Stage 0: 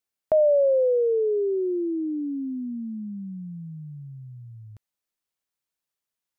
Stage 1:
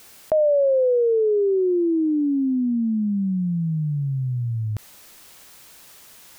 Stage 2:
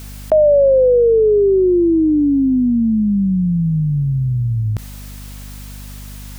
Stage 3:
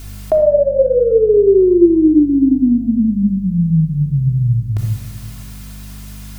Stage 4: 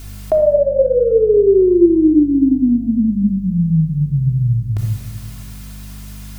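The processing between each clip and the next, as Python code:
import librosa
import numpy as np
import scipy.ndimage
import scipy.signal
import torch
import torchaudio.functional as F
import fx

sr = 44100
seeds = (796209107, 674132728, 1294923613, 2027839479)

y1 = fx.env_flatten(x, sr, amount_pct=70)
y2 = fx.add_hum(y1, sr, base_hz=50, snr_db=18)
y2 = y2 * librosa.db_to_amplitude(7.0)
y3 = fx.room_shoebox(y2, sr, seeds[0], volume_m3=3400.0, walls='furnished', distance_m=3.2)
y3 = y3 * librosa.db_to_amplitude(-2.5)
y4 = y3 + 10.0 ** (-19.5 / 20.0) * np.pad(y3, (int(241 * sr / 1000.0), 0))[:len(y3)]
y4 = y4 * librosa.db_to_amplitude(-1.0)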